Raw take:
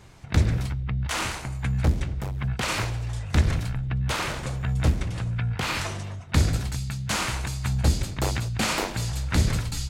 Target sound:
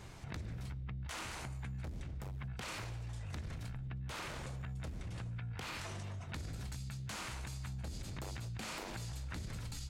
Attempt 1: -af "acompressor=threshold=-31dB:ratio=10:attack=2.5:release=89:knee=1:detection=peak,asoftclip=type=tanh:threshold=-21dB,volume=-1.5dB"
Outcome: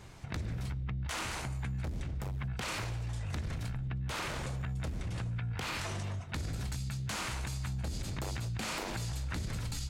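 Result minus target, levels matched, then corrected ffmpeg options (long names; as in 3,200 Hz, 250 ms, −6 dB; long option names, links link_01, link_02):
downward compressor: peak gain reduction −7 dB
-af "acompressor=threshold=-38.5dB:ratio=10:attack=2.5:release=89:knee=1:detection=peak,asoftclip=type=tanh:threshold=-21dB,volume=-1.5dB"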